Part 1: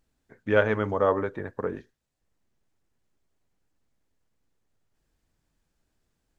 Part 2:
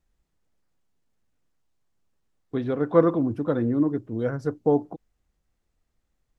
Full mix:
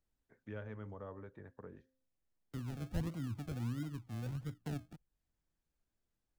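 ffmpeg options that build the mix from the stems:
-filter_complex "[0:a]bandreject=f=261.5:t=h:w=4,bandreject=f=523:t=h:w=4,volume=-14dB[a];[1:a]agate=range=-10dB:threshold=-43dB:ratio=16:detection=peak,equalizer=f=430:w=0.97:g=-13,acrusher=samples=36:mix=1:aa=0.000001:lfo=1:lforange=21.6:lforate=1.5,volume=-5dB[b];[a][b]amix=inputs=2:normalize=0,acrossover=split=200[c][d];[d]acompressor=threshold=-57dB:ratio=2[e];[c][e]amix=inputs=2:normalize=0"

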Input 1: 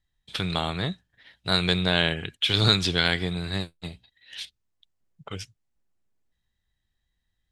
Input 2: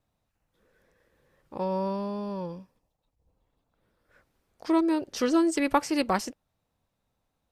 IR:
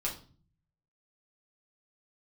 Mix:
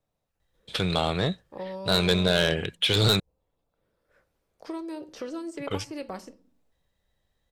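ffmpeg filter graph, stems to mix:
-filter_complex "[0:a]asoftclip=type=tanh:threshold=-17.5dB,adelay=400,volume=2dB,asplit=3[a][b][c];[a]atrim=end=3.2,asetpts=PTS-STARTPTS,afade=t=out:st=3.196:d=0.004:c=hsin[d];[b]atrim=start=3.2:end=5.57,asetpts=PTS-STARTPTS,volume=0[e];[c]atrim=start=5.57,asetpts=PTS-STARTPTS,afade=t=in:d=0.004:c=hsin[f];[d][e][f]concat=n=3:v=0:a=1[g];[1:a]acrossover=split=310|3000[h][i][j];[h]acompressor=threshold=-38dB:ratio=4[k];[i]acompressor=threshold=-35dB:ratio=4[l];[j]acompressor=threshold=-49dB:ratio=4[m];[k][l][m]amix=inputs=3:normalize=0,equalizer=f=430:w=0.39:g=-3,volume=-6dB,asplit=2[n][o];[o]volume=-10dB[p];[2:a]atrim=start_sample=2205[q];[p][q]afir=irnorm=-1:irlink=0[r];[g][n][r]amix=inputs=3:normalize=0,equalizer=f=510:t=o:w=0.96:g=8"

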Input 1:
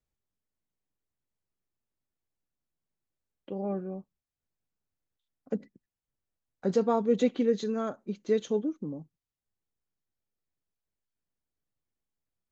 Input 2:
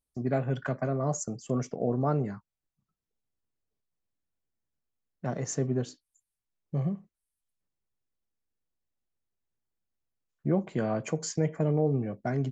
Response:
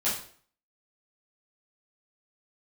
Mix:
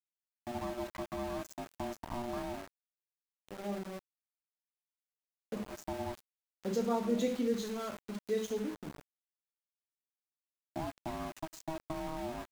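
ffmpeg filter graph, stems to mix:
-filter_complex "[0:a]highshelf=f=4.6k:g=11,volume=-11.5dB,asplit=3[a][b][c];[b]volume=-7.5dB[d];[1:a]acrossover=split=120|390[e][f][g];[e]acompressor=threshold=-42dB:ratio=4[h];[f]acompressor=threshold=-36dB:ratio=4[i];[g]acompressor=threshold=-42dB:ratio=4[j];[h][i][j]amix=inputs=3:normalize=0,aeval=exprs='val(0)*sin(2*PI*480*n/s)':c=same,adelay=300,volume=-2.5dB,asplit=2[k][l];[l]volume=-21dB[m];[c]apad=whole_len=565010[n];[k][n]sidechaincompress=threshold=-53dB:ratio=8:attack=5.5:release=232[o];[2:a]atrim=start_sample=2205[p];[d][m]amix=inputs=2:normalize=0[q];[q][p]afir=irnorm=-1:irlink=0[r];[a][o][r]amix=inputs=3:normalize=0,aeval=exprs='val(0)*gte(abs(val(0)),0.00794)':c=same"

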